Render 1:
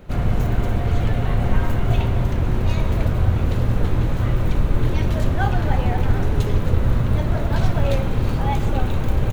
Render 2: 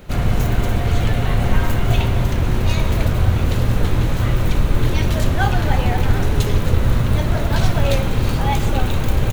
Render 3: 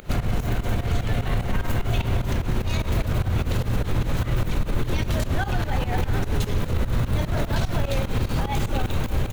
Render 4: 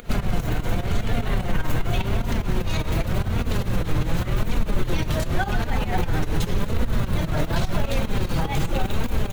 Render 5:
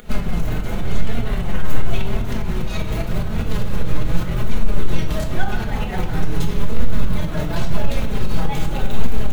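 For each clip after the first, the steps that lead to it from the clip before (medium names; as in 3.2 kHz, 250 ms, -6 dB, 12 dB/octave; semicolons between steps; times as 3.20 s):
treble shelf 2.3 kHz +9 dB; trim +2 dB
upward compressor, threshold -34 dBFS; peak limiter -14 dBFS, peak gain reduction 11 dB; volume shaper 149 bpm, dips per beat 2, -16 dB, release 113 ms
flange 0.88 Hz, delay 4.1 ms, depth 2.6 ms, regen +43%; trim +5 dB
reverberation RT60 0.50 s, pre-delay 5 ms, DRR 2 dB; trim -2.5 dB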